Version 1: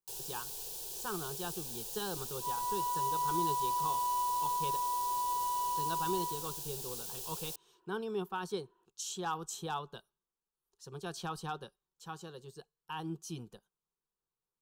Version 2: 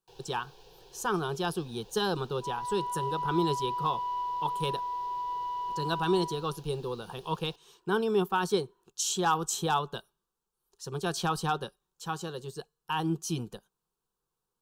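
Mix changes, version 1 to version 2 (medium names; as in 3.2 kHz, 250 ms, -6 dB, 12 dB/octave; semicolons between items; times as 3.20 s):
speech +10.0 dB; first sound: add distance through air 290 m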